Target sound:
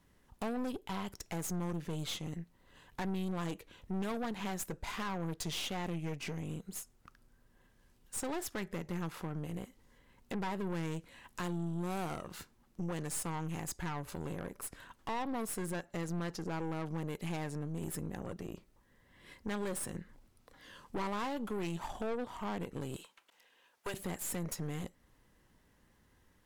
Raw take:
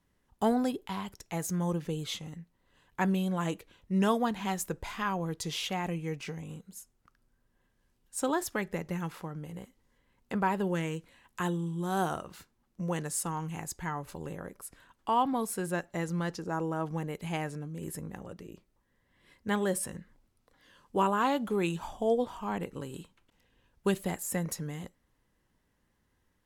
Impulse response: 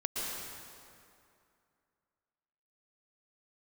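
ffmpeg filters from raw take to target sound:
-filter_complex "[0:a]asettb=1/sr,asplit=3[a][b][c];[a]atrim=end=22.964[d];[b]atrim=start=22.96:end=23.94,asetpts=PTS-STARTPTS,afade=t=in:d=0.004:c=qsin,afade=t=out:st=0.976:d=0.004:c=qsin,highpass=630[e];[c]atrim=start=23.936[f];[d][e]acrossfade=d=0.004:c1=hsin:c2=qsin[g];[g][f]acrossfade=d=0.004:c1=qsin:c2=hsin,acompressor=threshold=-47dB:ratio=2,aeval=exprs='(tanh(141*val(0)+0.65)-tanh(0.65))/141':c=same,volume=9.5dB"

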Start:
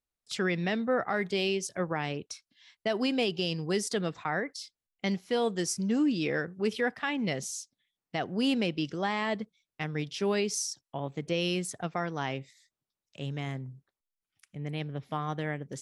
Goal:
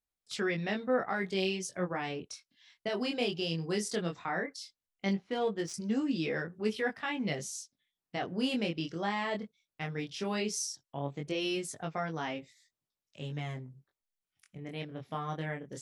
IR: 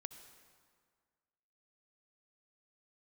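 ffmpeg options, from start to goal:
-filter_complex "[0:a]flanger=delay=18.5:depth=6.3:speed=0.16,asettb=1/sr,asplit=3[a][b][c];[a]atrim=end=5.134[d];[b]atrim=start=5.13:end=5.74,asetpts=PTS-STARTPTS,afade=t=in:d=0.004:c=qsin,afade=t=out:st=0.606:d=0.004:c=qsin,adynamicsmooth=sensitivity=4.5:basefreq=2.9k[e];[c]atrim=start=5.736[f];[d][e]acrossfade=d=0.004:c1=hsin:c2=qsin[g];[g][f]acrossfade=d=0.004:c1=qsin:c2=hsin"

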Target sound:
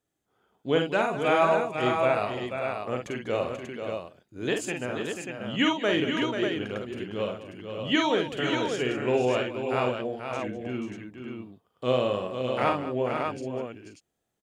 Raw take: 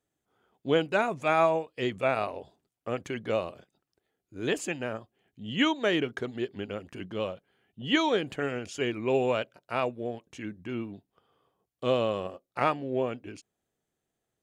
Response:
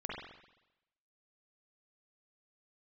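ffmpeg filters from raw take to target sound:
-af "aecho=1:1:48|62|200|486|525|588:0.562|0.15|0.2|0.422|0.2|0.531"

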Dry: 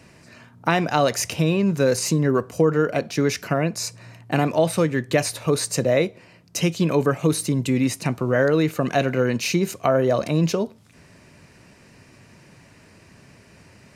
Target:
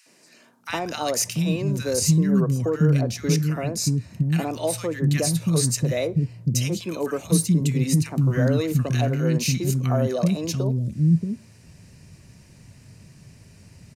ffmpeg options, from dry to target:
-filter_complex "[0:a]bass=f=250:g=13,treble=f=4k:g=9,acrossover=split=280|1300[a][b][c];[b]adelay=60[d];[a]adelay=690[e];[e][d][c]amix=inputs=3:normalize=0,volume=-6dB"

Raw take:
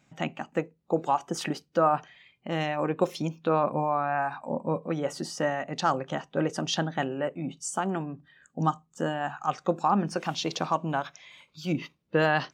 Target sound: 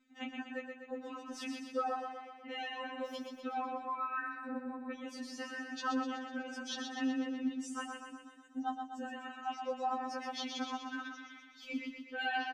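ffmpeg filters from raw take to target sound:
-af "firequalizer=gain_entry='entry(290,0);entry(480,-11);entry(1800,0);entry(7700,-9)':delay=0.05:min_phase=1,aecho=1:1:124|248|372|496|620|744|868|992:0.531|0.303|0.172|0.0983|0.056|0.0319|0.0182|0.0104,afftfilt=real='re*3.46*eq(mod(b,12),0)':imag='im*3.46*eq(mod(b,12),0)':win_size=2048:overlap=0.75,volume=-4dB"

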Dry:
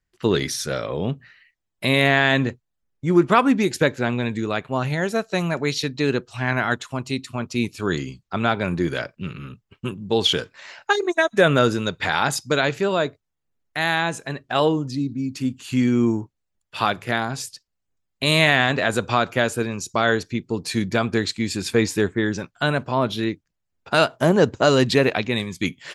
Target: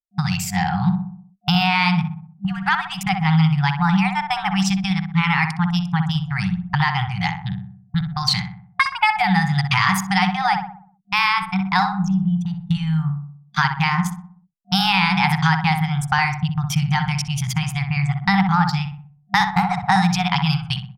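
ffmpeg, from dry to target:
-filter_complex "[0:a]atempo=0.93,anlmdn=39.8,agate=range=-38dB:threshold=-34dB:ratio=16:detection=peak,bass=f=250:g=7,treble=f=4k:g=-8,acompressor=threshold=-17dB:ratio=20,asplit=2[a][b];[b]adelay=83,lowpass=f=1k:p=1,volume=-4.5dB,asplit=2[c][d];[d]adelay=83,lowpass=f=1k:p=1,volume=0.54,asplit=2[e][f];[f]adelay=83,lowpass=f=1k:p=1,volume=0.54,asplit=2[g][h];[h]adelay=83,lowpass=f=1k:p=1,volume=0.54,asplit=2[i][j];[j]adelay=83,lowpass=f=1k:p=1,volume=0.54,asplit=2[k][l];[l]adelay=83,lowpass=f=1k:p=1,volume=0.54,asplit=2[m][n];[n]adelay=83,lowpass=f=1k:p=1,volume=0.54[o];[a][c][e][g][i][k][m][o]amix=inputs=8:normalize=0,asetrate=58653,aresample=44100,afftfilt=real='re*(1-between(b*sr/4096,200,720))':imag='im*(1-between(b*sr/4096,200,720))':win_size=4096:overlap=0.75,volume=6dB"

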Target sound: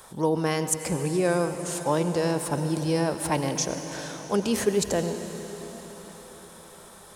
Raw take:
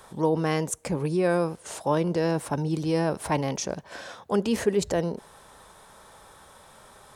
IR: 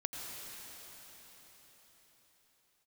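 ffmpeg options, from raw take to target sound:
-filter_complex "[0:a]highshelf=f=5.3k:g=9,asplit=2[a][b];[1:a]atrim=start_sample=2205[c];[b][c]afir=irnorm=-1:irlink=0,volume=-3dB[d];[a][d]amix=inputs=2:normalize=0,volume=-4.5dB"

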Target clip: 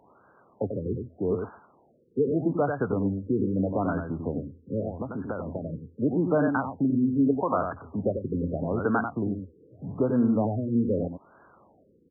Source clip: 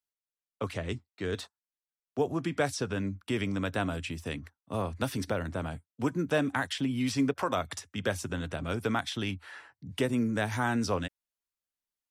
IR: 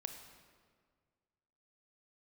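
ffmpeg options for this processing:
-filter_complex "[0:a]aeval=exprs='val(0)+0.5*0.00668*sgn(val(0))':c=same,highpass=120,asplit=2[a][b];[b]alimiter=limit=-23.5dB:level=0:latency=1:release=349,volume=1dB[c];[a][c]amix=inputs=2:normalize=0,asettb=1/sr,asplit=3[d][e][f];[d]atrim=end=4.804[g];[e]atrim=start=4.8:end=5.73,asetpts=PTS-STARTPTS,afade=t=in:d=0.004:c=qsin,afade=t=out:st=0.926:d=0.004:c=qsin,acompressor=threshold=-29dB:ratio=6[h];[f]atrim=start=5.726[i];[g][h]acrossfade=d=0.004:c1=hsin:c2=qsin[j];[j][i]acrossfade=d=0.004:c1=qsin:c2=hsin,aecho=1:1:93:0.501,afftfilt=real='re*lt(b*sr/1024,510*pow(1700/510,0.5+0.5*sin(2*PI*0.81*pts/sr)))':imag='im*lt(b*sr/1024,510*pow(1700/510,0.5+0.5*sin(2*PI*0.81*pts/sr)))':win_size=1024:overlap=0.75"

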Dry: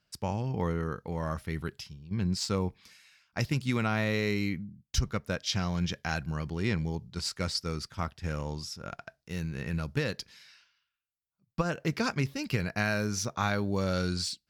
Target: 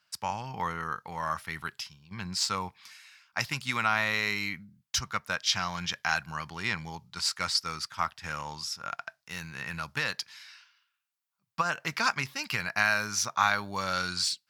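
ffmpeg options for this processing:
-af "highpass=95,lowshelf=f=650:t=q:w=1.5:g=-13,volume=5dB"

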